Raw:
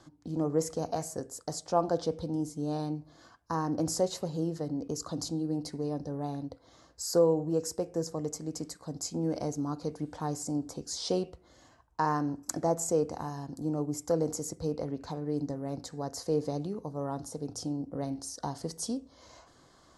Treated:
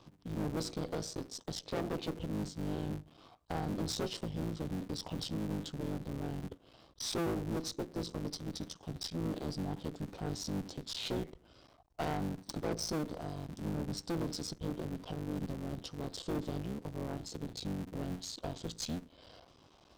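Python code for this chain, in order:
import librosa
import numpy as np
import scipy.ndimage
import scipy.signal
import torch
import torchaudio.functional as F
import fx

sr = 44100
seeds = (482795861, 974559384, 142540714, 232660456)

y = fx.cycle_switch(x, sr, every=3, mode='muted')
y = fx.tube_stage(y, sr, drive_db=31.0, bias=0.4)
y = fx.formant_shift(y, sr, semitones=-5)
y = y * librosa.db_to_amplitude(1.0)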